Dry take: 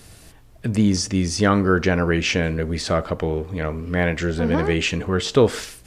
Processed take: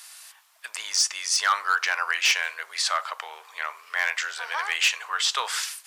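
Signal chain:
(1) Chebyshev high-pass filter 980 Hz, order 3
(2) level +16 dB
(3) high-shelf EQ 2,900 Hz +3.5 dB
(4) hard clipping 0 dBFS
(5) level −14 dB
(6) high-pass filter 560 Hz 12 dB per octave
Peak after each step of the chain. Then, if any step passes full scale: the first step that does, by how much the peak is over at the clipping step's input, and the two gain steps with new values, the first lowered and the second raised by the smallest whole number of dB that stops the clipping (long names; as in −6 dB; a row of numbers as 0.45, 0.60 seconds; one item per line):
−9.5, +6.5, +8.0, 0.0, −14.0, −10.5 dBFS
step 2, 8.0 dB
step 2 +8 dB, step 5 −6 dB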